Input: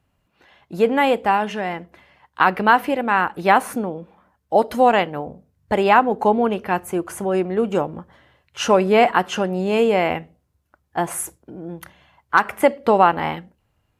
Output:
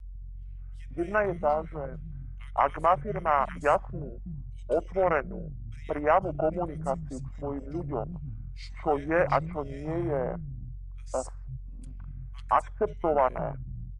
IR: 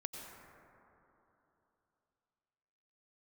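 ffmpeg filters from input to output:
-filter_complex "[0:a]acrossover=split=250|2800[a][b][c];[b]adelay=170[d];[a]adelay=500[e];[e][d][c]amix=inputs=3:normalize=0,aeval=exprs='val(0)+0.0158*(sin(2*PI*60*n/s)+sin(2*PI*2*60*n/s)/2+sin(2*PI*3*60*n/s)/3+sin(2*PI*4*60*n/s)/4+sin(2*PI*5*60*n/s)/5)':c=same,afwtdn=0.0708,apsyclip=7dB,asetrate=33038,aresample=44100,atempo=1.33484,equalizer=f=280:w=0.58:g=-14.5,volume=-7dB"

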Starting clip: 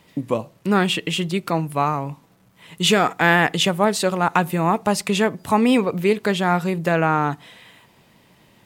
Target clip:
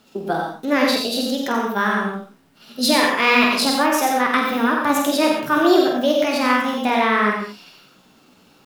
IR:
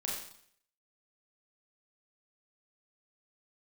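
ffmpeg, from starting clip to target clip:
-filter_complex "[0:a]asetrate=62367,aresample=44100,atempo=0.707107,flanger=delay=4.6:depth=7:regen=57:speed=1.5:shape=sinusoidal,asplit=2[a][b];[1:a]atrim=start_sample=2205,afade=t=out:st=0.23:d=0.01,atrim=end_sample=10584,adelay=48[c];[b][c]afir=irnorm=-1:irlink=0,volume=-2.5dB[d];[a][d]amix=inputs=2:normalize=0,volume=2.5dB"

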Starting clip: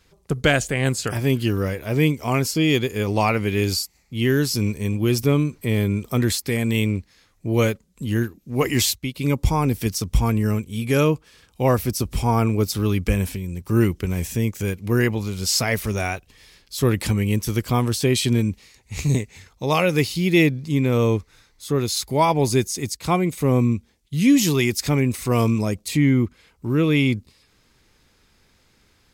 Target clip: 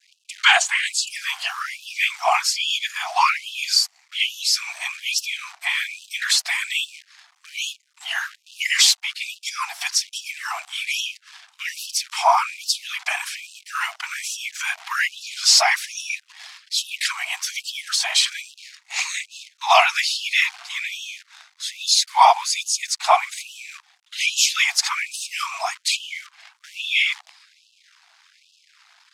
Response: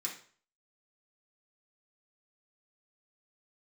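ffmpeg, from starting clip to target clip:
-filter_complex "[0:a]adynamicequalizer=threshold=0.0112:dfrequency=2600:dqfactor=0.72:tfrequency=2600:tqfactor=0.72:attack=5:release=100:ratio=0.375:range=3.5:mode=cutabove:tftype=bell,acrossover=split=280|1100|1900[a][b][c][d];[c]acompressor=threshold=-41dB:ratio=4[e];[a][b][e][d]amix=inputs=4:normalize=0,afftfilt=real='hypot(re,im)*cos(2*PI*random(0))':imag='hypot(re,im)*sin(2*PI*random(1))':win_size=512:overlap=0.75,apsyclip=21dB,acrusher=bits=6:dc=4:mix=0:aa=0.000001,highpass=140,lowpass=5.8k,afftfilt=real='re*gte(b*sr/1024,640*pow(2600/640,0.5+0.5*sin(2*PI*1.2*pts/sr)))':imag='im*gte(b*sr/1024,640*pow(2600/640,0.5+0.5*sin(2*PI*1.2*pts/sr)))':win_size=1024:overlap=0.75,volume=-2.5dB"

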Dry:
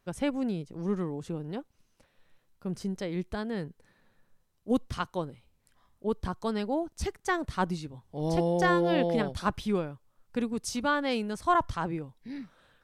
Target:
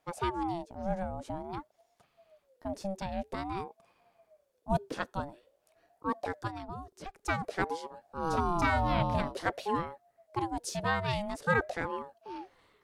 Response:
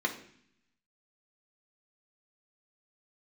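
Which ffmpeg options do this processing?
-filter_complex "[0:a]asettb=1/sr,asplit=3[a][b][c];[a]atrim=end=6.474[d];[b]atrim=start=6.47:end=7.16,asetpts=PTS-STARTPTS,afade=t=in:d=0.004:c=qsin,afade=t=out:st=0.686:d=0.004:c=qsin,acrossover=split=150|3200[e][f][g];[e]acompressor=threshold=-54dB:ratio=4[h];[f]acompressor=threshold=-37dB:ratio=4[i];[g]acompressor=threshold=-58dB:ratio=4[j];[h][i][j]amix=inputs=3:normalize=0[k];[c]atrim=start=7.156[l];[d][k]acrossfade=d=0.004:c1=hsin:c2=qsin[m];[m][l]acrossfade=d=0.004:c1=qsin:c2=hsin,aeval=exprs='val(0)*sin(2*PI*540*n/s+540*0.3/0.5*sin(2*PI*0.5*n/s))':c=same"

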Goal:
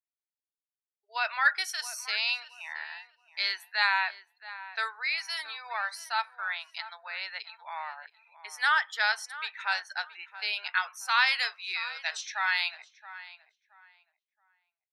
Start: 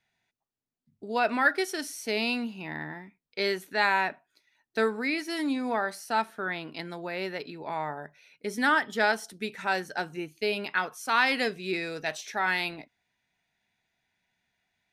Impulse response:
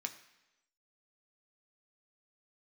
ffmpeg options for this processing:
-filter_complex "[0:a]highpass=f=950:w=0.5412,highpass=f=950:w=1.3066,afftdn=nr=33:nf=-50,adynamicequalizer=threshold=0.00501:dfrequency=4400:dqfactor=1.4:tfrequency=4400:tqfactor=1.4:attack=5:release=100:ratio=0.375:range=2.5:mode=boostabove:tftype=bell,asplit=2[a][b];[b]adelay=673,lowpass=f=2.1k:p=1,volume=-14.5dB,asplit=2[c][d];[d]adelay=673,lowpass=f=2.1k:p=1,volume=0.26,asplit=2[e][f];[f]adelay=673,lowpass=f=2.1k:p=1,volume=0.26[g];[c][e][g]amix=inputs=3:normalize=0[h];[a][h]amix=inputs=2:normalize=0"

